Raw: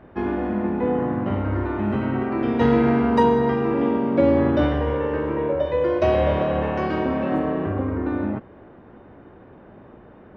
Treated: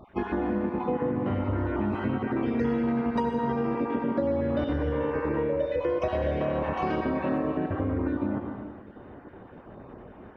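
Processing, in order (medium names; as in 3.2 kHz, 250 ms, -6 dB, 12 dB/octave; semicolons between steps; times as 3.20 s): random holes in the spectrogram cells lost 24%; on a send at -5 dB: reverberation RT60 1.2 s, pre-delay 62 ms; on the sum: compression 6:1, threshold -24 dBFS, peak gain reduction 12.5 dB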